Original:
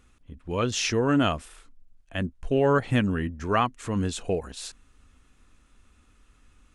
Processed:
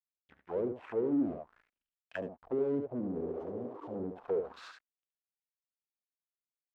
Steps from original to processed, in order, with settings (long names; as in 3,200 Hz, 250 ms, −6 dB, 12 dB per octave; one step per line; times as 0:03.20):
treble cut that deepens with the level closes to 620 Hz, closed at −22 dBFS
healed spectral selection 0:03.21–0:03.94, 280–2,700 Hz both
downward compressor 1.5 to 1, threshold −28 dBFS, peak gain reduction 4 dB
leveller curve on the samples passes 3
slack as between gear wheels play −29 dBFS
on a send: single-tap delay 71 ms −7 dB
on the sum: asymmetric clip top −21 dBFS, bottom −17.5 dBFS
envelope filter 310–3,400 Hz, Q 3.3, down, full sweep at −19 dBFS
level −3.5 dB